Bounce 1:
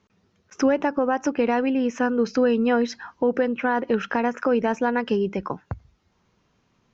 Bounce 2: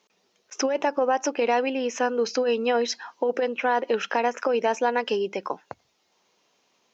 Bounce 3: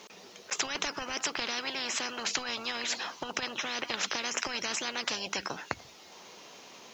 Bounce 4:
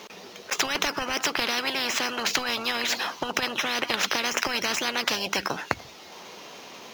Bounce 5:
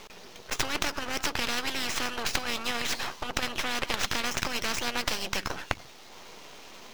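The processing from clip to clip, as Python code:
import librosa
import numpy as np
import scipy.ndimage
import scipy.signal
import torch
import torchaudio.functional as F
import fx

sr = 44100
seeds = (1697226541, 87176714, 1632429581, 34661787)

y1 = scipy.signal.sosfilt(scipy.signal.butter(2, 630.0, 'highpass', fs=sr, output='sos'), x)
y1 = fx.peak_eq(y1, sr, hz=1400.0, db=-10.5, octaves=1.4)
y1 = fx.over_compress(y1, sr, threshold_db=-28.0, ratio=-0.5)
y1 = y1 * librosa.db_to_amplitude(7.5)
y2 = fx.spectral_comp(y1, sr, ratio=10.0)
y3 = scipy.ndimage.median_filter(y2, 5, mode='constant')
y3 = y3 * librosa.db_to_amplitude(8.0)
y4 = np.maximum(y3, 0.0)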